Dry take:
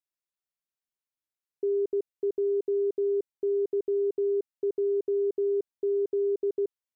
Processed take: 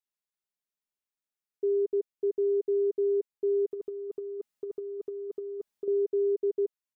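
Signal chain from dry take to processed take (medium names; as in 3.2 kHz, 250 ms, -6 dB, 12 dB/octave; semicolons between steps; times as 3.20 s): comb 4.8 ms, depth 59%; 3.71–5.88 s: compressor with a negative ratio -29 dBFS, ratio -0.5; trim -3.5 dB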